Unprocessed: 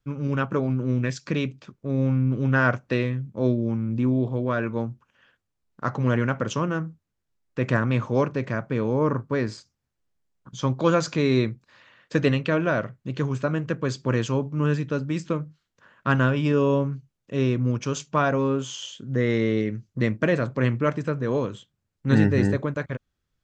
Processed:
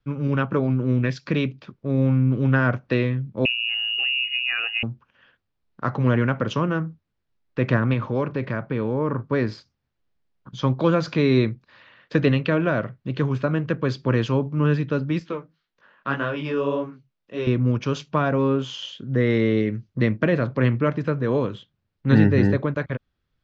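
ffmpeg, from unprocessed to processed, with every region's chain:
-filter_complex "[0:a]asettb=1/sr,asplit=3[a][b][c];[a]atrim=end=3.454[d];[b]atrim=start=3.45:end=4.83,asetpts=PTS-STARTPTS,afade=t=in:d=0.004:c=qsin,afade=t=out:st=1.376:d=0.004:c=qsin,aecho=1:1:2.3:0.34,atrim=end_sample=60858,lowpass=f=2.6k:t=q:w=0.5098,lowpass=f=2.6k:t=q:w=0.6013,lowpass=f=2.6k:t=q:w=0.9,lowpass=f=2.6k:t=q:w=2.563,afreqshift=-3000[e];[c]atrim=start=4.826[f];[d][e]acrossfade=d=0.004:c1=hsin:c2=qsin[g];[g][f]acrossfade=d=0.004:c1=qsin:c2=hsin,asettb=1/sr,asplit=3[h][i][j];[h]atrim=end=7.934[k];[i]atrim=start=7.93:end=9.21,asetpts=PTS-STARTPTS,afade=t=in:d=0.004:c=qsin,afade=t=out:st=1.276:d=0.004:c=qsin,lowpass=5.5k,acompressor=threshold=-24dB:ratio=2:attack=3.2:release=140:knee=1:detection=peak,bandreject=f=710:w=20[l];[j]atrim=start=9.206[m];[k][l]acrossfade=d=0.004:c1=hsin:c2=qsin[n];[n][m]acrossfade=d=0.004:c1=qsin:c2=hsin,asettb=1/sr,asplit=3[o][p][q];[o]atrim=end=15.194[r];[p]atrim=start=15.19:end=17.47,asetpts=PTS-STARTPTS,afade=t=in:d=0.004:c=qsin,afade=t=out:st=2.276:d=0.004:c=qsin,equalizer=f=78:w=0.57:g=-15,flanger=delay=17:depth=6.6:speed=1.8[s];[q]atrim=start=17.466[t];[r][s]acrossfade=d=0.004:c1=hsin:c2=qsin[u];[u][t]acrossfade=d=0.004:c1=qsin:c2=hsin,lowpass=f=4.7k:w=0.5412,lowpass=f=4.7k:w=1.3066,acrossover=split=380[v][w];[w]acompressor=threshold=-25dB:ratio=2.5[x];[v][x]amix=inputs=2:normalize=0,volume=3dB"

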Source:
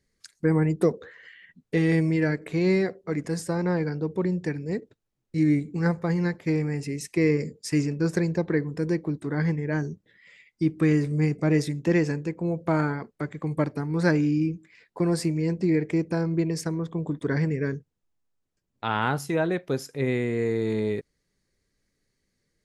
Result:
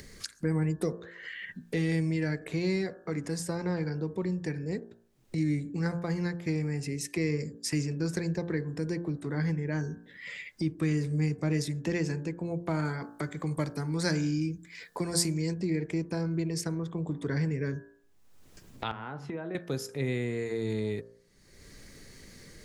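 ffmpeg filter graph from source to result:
-filter_complex "[0:a]asettb=1/sr,asplit=3[a][b][c];[a]atrim=end=12.854[d];[b]atrim=start=12.85:end=15.54,asetpts=PTS-STARTPTS,afade=t=in:d=0.004:c=qsin,afade=t=out:st=2.686:d=0.004:c=qsin,highshelf=f=3.4k:g=10,bandreject=f=2.7k:w=11[e];[c]atrim=start=15.536[f];[d][e]acrossfade=d=0.004:c1=hsin:c2=qsin[g];[g][f]acrossfade=d=0.004:c1=qsin:c2=hsin,asettb=1/sr,asplit=3[h][i][j];[h]atrim=end=18.914[k];[i]atrim=start=18.91:end=19.55,asetpts=PTS-STARTPTS,afade=t=in:d=0.004:c=qsin,afade=t=out:st=0.636:d=0.004:c=qsin,highpass=130,lowpass=2.1k,acompressor=threshold=-38dB:ratio=2.5:attack=3.2:release=140:knee=1:detection=peak[l];[j]atrim=start=19.546[m];[k][l]acrossfade=d=0.004:c1=hsin:c2=qsin[n];[n][m]acrossfade=d=0.004:c1=qsin:c2=hsin,acompressor=mode=upward:threshold=-29dB:ratio=2.5,bandreject=f=57.44:t=h:w=4,bandreject=f=114.88:t=h:w=4,bandreject=f=172.32:t=h:w=4,bandreject=f=229.76:t=h:w=4,bandreject=f=287.2:t=h:w=4,bandreject=f=344.64:t=h:w=4,bandreject=f=402.08:t=h:w=4,bandreject=f=459.52:t=h:w=4,bandreject=f=516.96:t=h:w=4,bandreject=f=574.4:t=h:w=4,bandreject=f=631.84:t=h:w=4,bandreject=f=689.28:t=h:w=4,bandreject=f=746.72:t=h:w=4,bandreject=f=804.16:t=h:w=4,bandreject=f=861.6:t=h:w=4,bandreject=f=919.04:t=h:w=4,bandreject=f=976.48:t=h:w=4,bandreject=f=1.03392k:t=h:w=4,bandreject=f=1.09136k:t=h:w=4,bandreject=f=1.1488k:t=h:w=4,bandreject=f=1.20624k:t=h:w=4,bandreject=f=1.26368k:t=h:w=4,bandreject=f=1.32112k:t=h:w=4,bandreject=f=1.37856k:t=h:w=4,bandreject=f=1.436k:t=h:w=4,bandreject=f=1.49344k:t=h:w=4,bandreject=f=1.55088k:t=h:w=4,bandreject=f=1.60832k:t=h:w=4,bandreject=f=1.66576k:t=h:w=4,bandreject=f=1.7232k:t=h:w=4,bandreject=f=1.78064k:t=h:w=4,acrossover=split=130|3000[o][p][q];[p]acompressor=threshold=-35dB:ratio=2[r];[o][r][q]amix=inputs=3:normalize=0"

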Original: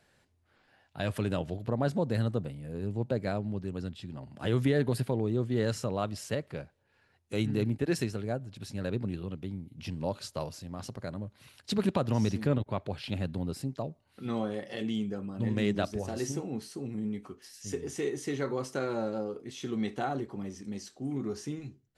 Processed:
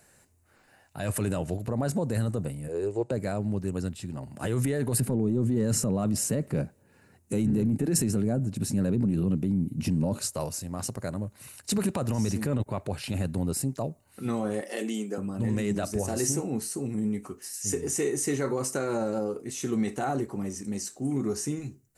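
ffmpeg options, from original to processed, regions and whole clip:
-filter_complex "[0:a]asettb=1/sr,asplit=3[a][b][c];[a]atrim=end=2.684[d];[b]atrim=start=2.68:end=3.11,asetpts=PTS-STARTPTS,afade=t=in:d=0.004:c=qsin,afade=t=out:st=0.426:d=0.004:c=qsin,lowpass=f=8.7k:w=0.5412,lowpass=f=8.7k:w=1.3066,lowshelf=f=290:t=q:w=3:g=-9,bandreject=f=5.8k:w=16[e];[c]atrim=start=3.106[f];[d][e]acrossfade=d=0.004:c1=hsin:c2=qsin[g];[g][f]acrossfade=d=0.004:c1=qsin:c2=hsin,asettb=1/sr,asplit=3[h][i][j];[h]atrim=end=5.004[k];[i]atrim=start=5:end=10.2,asetpts=PTS-STARTPTS,afade=t=in:d=0.004:c=qsin,afade=t=out:st=5.196:d=0.004:c=qsin,asoftclip=type=hard:threshold=-18.5dB,equalizer=f=210:t=o:w=2:g=13[l];[j]atrim=start=10.196[m];[k][l]acrossfade=d=0.004:c1=hsin:c2=qsin[n];[n][m]acrossfade=d=0.004:c1=qsin:c2=hsin,asettb=1/sr,asplit=3[o][p][q];[o]atrim=end=14.614[r];[p]atrim=start=14.61:end=15.18,asetpts=PTS-STARTPTS,afade=t=in:d=0.004:c=qsin,afade=t=out:st=0.566:d=0.004:c=qsin,highpass=f=250:w=0.5412,highpass=f=250:w=1.3066,highshelf=f=8.9k:g=4[s];[q]atrim=start=15.176[t];[r][s]acrossfade=d=0.004:c1=hsin:c2=qsin[u];[u][t]acrossfade=d=0.004:c1=qsin:c2=hsin,alimiter=level_in=0.5dB:limit=-24dB:level=0:latency=1:release=15,volume=-0.5dB,highshelf=f=5.9k:t=q:w=1.5:g=10,bandreject=f=3.3k:w=8.3,volume=5.5dB"

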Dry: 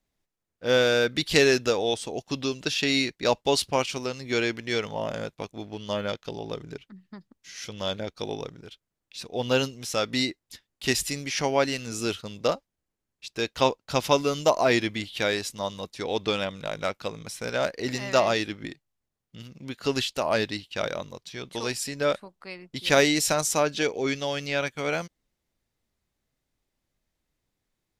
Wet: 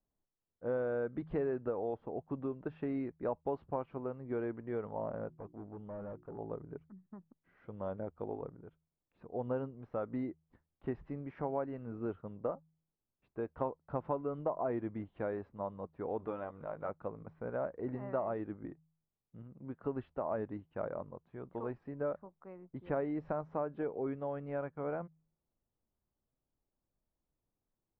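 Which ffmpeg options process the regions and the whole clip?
-filter_complex "[0:a]asettb=1/sr,asplit=3[a][b][c];[a]atrim=end=5.284[d];[b]atrim=start=5.28:end=6.38,asetpts=PTS-STARTPTS,afade=t=in:d=0.004:c=qsin,afade=t=out:st=1.096:d=0.004:c=qsin,highshelf=f=3.6k:g=-10,bandreject=f=60:t=h:w=6,bandreject=f=120:t=h:w=6,bandreject=f=180:t=h:w=6,bandreject=f=240:t=h:w=6,bandreject=f=300:t=h:w=6,bandreject=f=360:t=h:w=6,asoftclip=type=hard:threshold=-34.5dB[e];[c]atrim=start=6.376[f];[d][e]acrossfade=d=0.004:c1=hsin:c2=qsin[g];[g][f]acrossfade=d=0.004:c1=qsin:c2=hsin,asettb=1/sr,asplit=3[h][i][j];[h]atrim=end=16.194[k];[i]atrim=start=16.19:end=16.89,asetpts=PTS-STARTPTS,afade=t=in:d=0.004:c=qsin,afade=t=out:st=0.696:d=0.004:c=qsin,lowshelf=f=460:g=-6.5,acompressor=mode=upward:threshold=-33dB:ratio=2.5:attack=3.2:release=140:knee=2.83:detection=peak,asplit=2[l][m];[m]adelay=13,volume=-7dB[n];[l][n]amix=inputs=2:normalize=0,atrim=end_sample=30870[o];[j]atrim=start=16.886[p];[k][o]acrossfade=d=0.004:c1=hsin:c2=qsin[q];[q][p]acrossfade=d=0.004:c1=qsin:c2=hsin,lowpass=f=1.2k:w=0.5412,lowpass=f=1.2k:w=1.3066,bandreject=f=79.55:t=h:w=4,bandreject=f=159.1:t=h:w=4,acompressor=threshold=-26dB:ratio=3,volume=-7dB"

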